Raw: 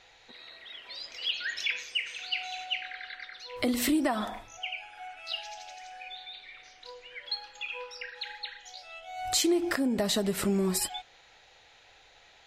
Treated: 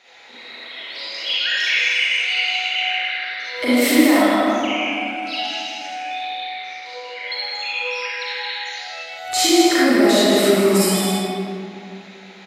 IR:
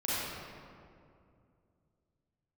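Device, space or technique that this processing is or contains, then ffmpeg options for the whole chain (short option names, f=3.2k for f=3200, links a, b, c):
stadium PA: -filter_complex "[0:a]highpass=250,equalizer=f=2.1k:t=o:w=0.26:g=4,aecho=1:1:157.4|271.1:0.501|0.316[a];[1:a]atrim=start_sample=2205[b];[a][b]afir=irnorm=-1:irlink=0,volume=5dB"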